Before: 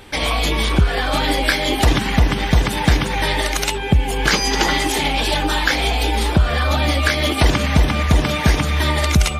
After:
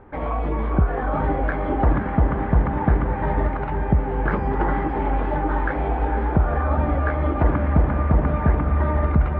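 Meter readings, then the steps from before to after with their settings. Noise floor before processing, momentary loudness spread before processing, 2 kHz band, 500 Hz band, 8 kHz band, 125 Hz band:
−23 dBFS, 2 LU, −11.5 dB, −2.5 dB, below −40 dB, −2.5 dB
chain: low-pass filter 1,400 Hz 24 dB per octave
on a send: feedback delay with all-pass diffusion 493 ms, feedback 63%, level −7.5 dB
on the sum: level −3.5 dB

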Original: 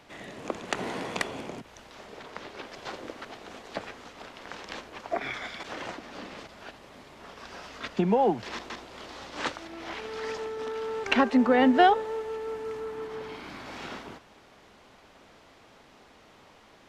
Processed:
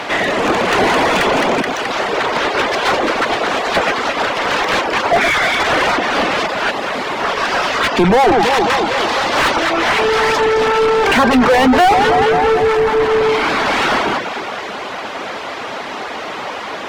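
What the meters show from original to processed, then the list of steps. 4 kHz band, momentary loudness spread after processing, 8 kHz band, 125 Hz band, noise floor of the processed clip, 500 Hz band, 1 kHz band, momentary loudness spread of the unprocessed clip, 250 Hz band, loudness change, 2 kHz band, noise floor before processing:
+20.0 dB, 13 LU, +20.0 dB, +15.0 dB, −26 dBFS, +17.0 dB, +17.0 dB, 22 LU, +11.5 dB, +15.0 dB, +20.5 dB, −56 dBFS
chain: delay that swaps between a low-pass and a high-pass 107 ms, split 1,000 Hz, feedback 70%, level −8.5 dB
mid-hump overdrive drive 38 dB, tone 2,200 Hz, clips at −7 dBFS
reverb reduction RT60 0.54 s
level +4 dB

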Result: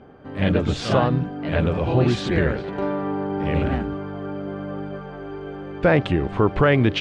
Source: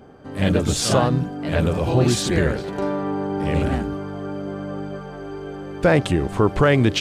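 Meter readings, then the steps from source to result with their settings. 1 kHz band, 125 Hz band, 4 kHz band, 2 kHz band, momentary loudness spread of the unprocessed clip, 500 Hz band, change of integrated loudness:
−0.5 dB, −1.0 dB, −4.0 dB, 0.0 dB, 15 LU, −1.0 dB, −1.0 dB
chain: Chebyshev low-pass filter 2,800 Hz, order 2

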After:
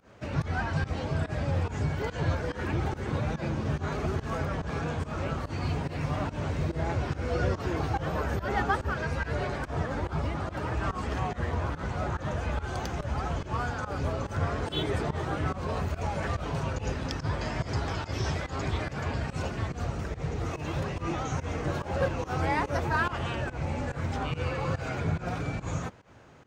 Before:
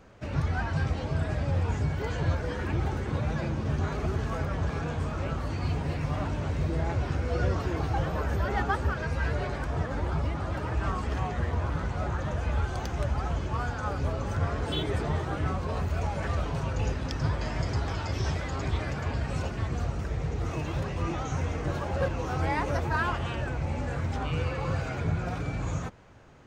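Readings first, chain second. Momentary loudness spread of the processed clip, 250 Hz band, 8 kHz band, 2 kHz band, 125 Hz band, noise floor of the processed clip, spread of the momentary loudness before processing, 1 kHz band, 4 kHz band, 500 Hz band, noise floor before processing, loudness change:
4 LU, 0.0 dB, +0.5 dB, +1.0 dB, −2.0 dB, −44 dBFS, 3 LU, +1.0 dB, +0.5 dB, +0.5 dB, −35 dBFS, −1.0 dB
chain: high-pass filter 90 Hz 6 dB per octave
fake sidechain pumping 143 BPM, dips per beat 1, −20 dB, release 120 ms
level +1.5 dB

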